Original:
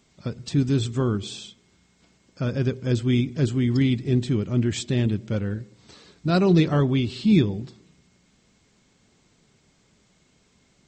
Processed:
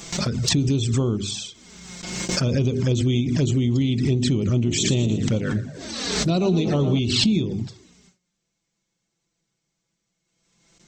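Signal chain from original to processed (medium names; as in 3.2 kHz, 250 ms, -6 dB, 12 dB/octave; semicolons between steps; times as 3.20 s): peaking EQ 5.9 kHz +4.5 dB 0.3 oct; hum notches 50/100/150/200/250/300/350/400 Hz; compression 16:1, threshold -23 dBFS, peak gain reduction 11.5 dB; 4.55–6.99 s: frequency-shifting echo 115 ms, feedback 54%, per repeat +40 Hz, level -11.5 dB; gate with hold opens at -50 dBFS; treble shelf 4.3 kHz +5.5 dB; touch-sensitive flanger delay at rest 6 ms, full sweep at -24 dBFS; swell ahead of each attack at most 36 dB/s; trim +6.5 dB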